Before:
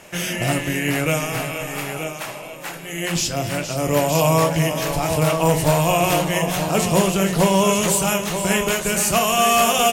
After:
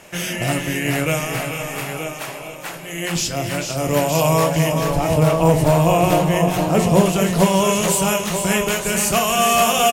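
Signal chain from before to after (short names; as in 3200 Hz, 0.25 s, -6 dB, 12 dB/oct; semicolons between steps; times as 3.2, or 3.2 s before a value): 4.72–7.06 tilt shelf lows +4.5 dB, about 1100 Hz; echo 0.442 s -9 dB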